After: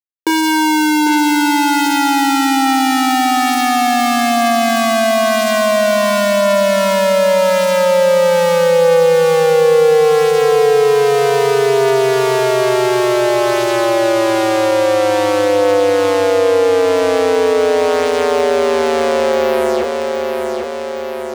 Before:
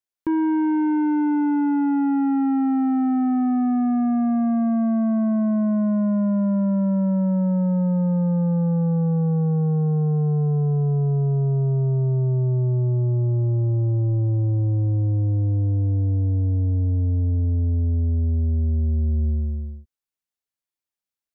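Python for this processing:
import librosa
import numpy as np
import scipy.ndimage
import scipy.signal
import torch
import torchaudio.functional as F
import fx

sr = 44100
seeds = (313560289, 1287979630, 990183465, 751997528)

p1 = fx.fuzz(x, sr, gain_db=56.0, gate_db=-54.0)
p2 = fx.highpass_res(p1, sr, hz=470.0, q=4.9)
p3 = fx.doubler(p2, sr, ms=30.0, db=-11)
p4 = p3 + fx.echo_feedback(p3, sr, ms=798, feedback_pct=39, wet_db=-9.5, dry=0)
p5 = fx.env_flatten(p4, sr, amount_pct=50)
y = F.gain(torch.from_numpy(p5), -2.0).numpy()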